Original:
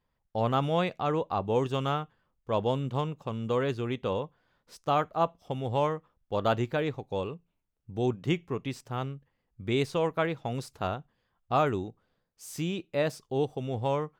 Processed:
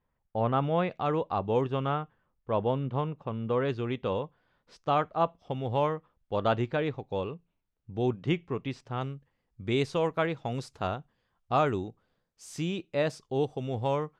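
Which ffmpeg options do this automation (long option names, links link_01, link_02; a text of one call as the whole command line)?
ffmpeg -i in.wav -af "asetnsamples=nb_out_samples=441:pad=0,asendcmd='0.9 lowpass f 4300;1.61 lowpass f 2400;3.65 lowpass f 4300;9.01 lowpass f 8100',lowpass=2300" out.wav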